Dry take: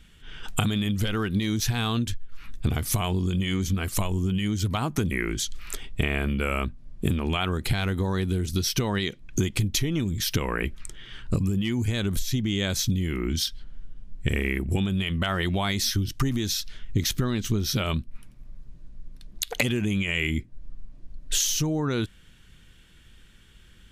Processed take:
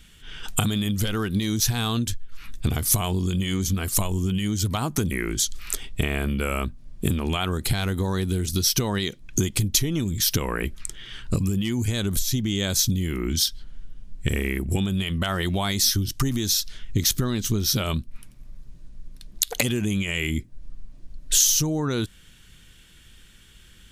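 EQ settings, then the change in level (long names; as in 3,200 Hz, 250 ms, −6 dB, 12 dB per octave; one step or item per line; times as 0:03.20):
high-shelf EQ 3,500 Hz +8.5 dB
dynamic equaliser 2,400 Hz, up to −5 dB, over −39 dBFS, Q 1.1
+1.0 dB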